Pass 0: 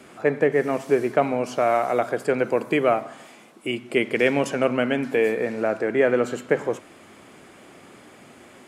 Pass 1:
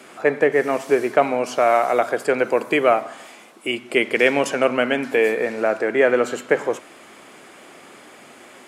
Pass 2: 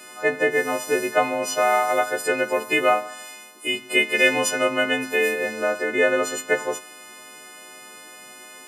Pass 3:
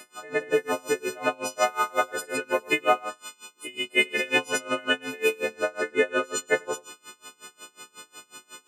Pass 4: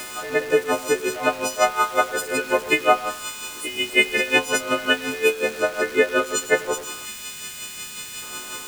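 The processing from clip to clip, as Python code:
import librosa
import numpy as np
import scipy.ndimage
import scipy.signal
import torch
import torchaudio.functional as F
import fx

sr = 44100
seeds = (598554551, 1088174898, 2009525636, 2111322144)

y1 = fx.highpass(x, sr, hz=440.0, slope=6)
y1 = y1 * librosa.db_to_amplitude(5.5)
y2 = fx.freq_snap(y1, sr, grid_st=3)
y2 = y2 * librosa.db_to_amplitude(-4.0)
y3 = y2 + 10.0 ** (-4.0 / 20.0) * np.pad(y2, (int(102 * sr / 1000.0), 0))[:len(y2)]
y3 = y3 * 10.0 ** (-26 * (0.5 - 0.5 * np.cos(2.0 * np.pi * 5.5 * np.arange(len(y3)) / sr)) / 20.0)
y4 = y3 + 0.5 * 10.0 ** (-34.0 / 20.0) * np.sign(y3)
y4 = fx.spec_box(y4, sr, start_s=7.05, length_s=1.18, low_hz=240.0, high_hz=1500.0, gain_db=-9)
y4 = y4 * librosa.db_to_amplitude(4.0)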